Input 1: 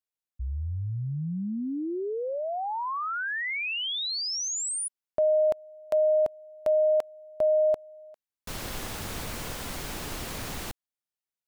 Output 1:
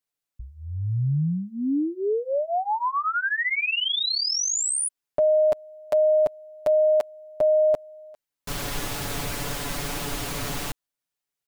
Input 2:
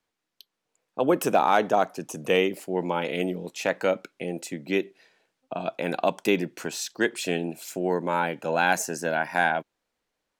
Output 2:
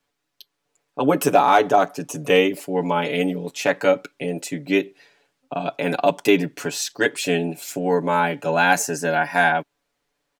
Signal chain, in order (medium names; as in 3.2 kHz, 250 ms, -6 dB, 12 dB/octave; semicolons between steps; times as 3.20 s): comb 7 ms, depth 91%; trim +3 dB